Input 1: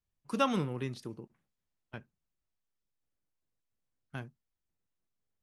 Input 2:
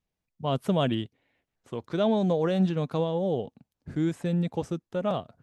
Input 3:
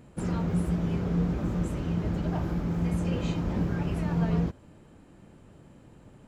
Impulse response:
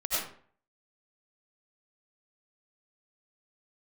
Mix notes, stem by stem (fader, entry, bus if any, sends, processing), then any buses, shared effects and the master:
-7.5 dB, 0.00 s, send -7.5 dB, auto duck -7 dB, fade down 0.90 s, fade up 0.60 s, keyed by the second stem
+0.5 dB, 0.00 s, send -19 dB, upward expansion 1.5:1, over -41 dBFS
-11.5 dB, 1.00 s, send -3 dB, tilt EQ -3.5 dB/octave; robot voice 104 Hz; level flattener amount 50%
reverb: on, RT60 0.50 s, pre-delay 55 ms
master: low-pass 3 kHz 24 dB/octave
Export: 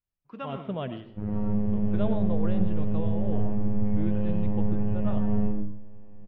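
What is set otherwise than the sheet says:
stem 1: send -7.5 dB -> -14.5 dB; stem 2 +0.5 dB -> -7.0 dB; stem 3: missing level flattener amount 50%

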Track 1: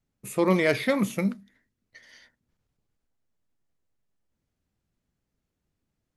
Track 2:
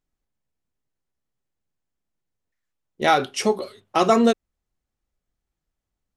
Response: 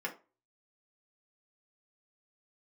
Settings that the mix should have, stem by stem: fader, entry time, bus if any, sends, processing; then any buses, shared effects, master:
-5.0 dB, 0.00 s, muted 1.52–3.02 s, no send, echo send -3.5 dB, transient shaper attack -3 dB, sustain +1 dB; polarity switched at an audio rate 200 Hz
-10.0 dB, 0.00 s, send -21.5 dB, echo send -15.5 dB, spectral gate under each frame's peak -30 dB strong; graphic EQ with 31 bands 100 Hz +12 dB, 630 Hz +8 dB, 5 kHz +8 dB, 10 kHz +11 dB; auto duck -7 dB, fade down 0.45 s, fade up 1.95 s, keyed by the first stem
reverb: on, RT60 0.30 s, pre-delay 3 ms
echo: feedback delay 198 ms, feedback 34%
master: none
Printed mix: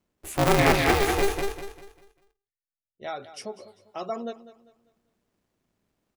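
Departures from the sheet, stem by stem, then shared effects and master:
stem 1 -5.0 dB -> +2.0 dB; stem 2 -10.0 dB -> -18.5 dB

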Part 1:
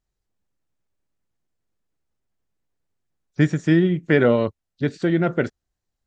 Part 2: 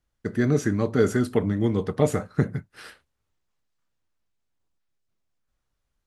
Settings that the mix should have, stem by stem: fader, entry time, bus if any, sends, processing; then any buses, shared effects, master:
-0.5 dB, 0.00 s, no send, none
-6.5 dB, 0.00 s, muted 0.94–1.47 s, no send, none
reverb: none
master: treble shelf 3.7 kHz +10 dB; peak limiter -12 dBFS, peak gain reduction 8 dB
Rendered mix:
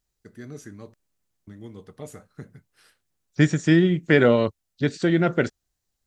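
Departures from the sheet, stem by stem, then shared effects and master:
stem 2 -6.5 dB -> -18.0 dB; master: missing peak limiter -12 dBFS, peak gain reduction 8 dB

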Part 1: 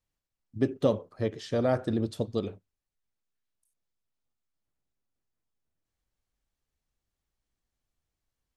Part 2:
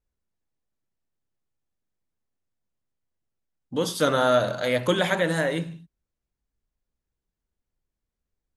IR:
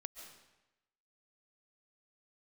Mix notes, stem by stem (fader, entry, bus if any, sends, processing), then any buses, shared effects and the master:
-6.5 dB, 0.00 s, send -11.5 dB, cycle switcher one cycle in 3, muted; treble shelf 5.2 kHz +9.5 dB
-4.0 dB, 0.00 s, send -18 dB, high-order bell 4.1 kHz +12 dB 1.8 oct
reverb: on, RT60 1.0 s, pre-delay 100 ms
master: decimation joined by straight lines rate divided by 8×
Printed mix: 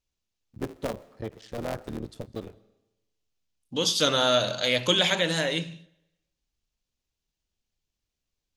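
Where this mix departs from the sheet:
stem 1: missing treble shelf 5.2 kHz +9.5 dB; master: missing decimation joined by straight lines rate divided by 8×

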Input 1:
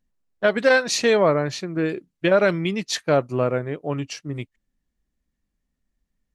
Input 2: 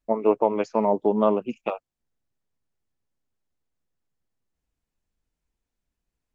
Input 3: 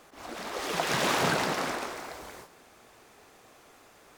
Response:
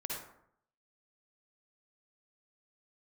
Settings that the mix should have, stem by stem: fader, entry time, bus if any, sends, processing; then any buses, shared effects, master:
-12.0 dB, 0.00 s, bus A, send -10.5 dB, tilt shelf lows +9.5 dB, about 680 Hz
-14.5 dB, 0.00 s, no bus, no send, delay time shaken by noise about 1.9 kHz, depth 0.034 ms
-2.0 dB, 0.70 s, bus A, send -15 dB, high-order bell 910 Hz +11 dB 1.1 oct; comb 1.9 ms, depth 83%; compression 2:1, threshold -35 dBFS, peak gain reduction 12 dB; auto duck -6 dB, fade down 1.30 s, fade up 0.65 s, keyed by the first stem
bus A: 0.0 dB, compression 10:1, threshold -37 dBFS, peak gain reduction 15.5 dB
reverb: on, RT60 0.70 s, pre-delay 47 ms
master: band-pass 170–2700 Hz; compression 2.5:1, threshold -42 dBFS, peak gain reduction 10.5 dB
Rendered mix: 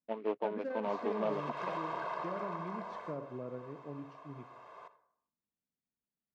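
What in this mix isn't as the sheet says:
stem 1 -12.0 dB -> -23.5 dB; master: missing compression 2.5:1, threshold -42 dBFS, peak gain reduction 10.5 dB

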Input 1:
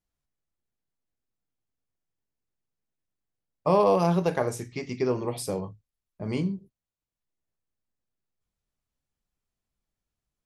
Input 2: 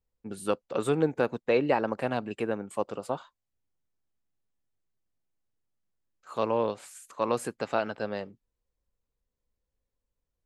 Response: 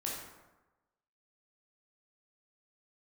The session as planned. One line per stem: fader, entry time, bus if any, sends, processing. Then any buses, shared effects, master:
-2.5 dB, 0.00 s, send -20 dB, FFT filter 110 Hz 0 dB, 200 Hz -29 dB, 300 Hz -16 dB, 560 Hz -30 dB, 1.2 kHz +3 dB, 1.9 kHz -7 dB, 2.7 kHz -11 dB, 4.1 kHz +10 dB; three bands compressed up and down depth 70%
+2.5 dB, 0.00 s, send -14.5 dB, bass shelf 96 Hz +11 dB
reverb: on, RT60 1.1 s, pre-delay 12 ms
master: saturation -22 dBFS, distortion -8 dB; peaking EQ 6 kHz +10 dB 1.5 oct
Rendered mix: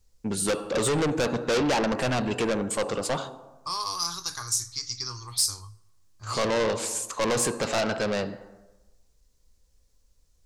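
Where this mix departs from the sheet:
stem 1: missing three bands compressed up and down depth 70%; stem 2 +2.5 dB -> +9.5 dB

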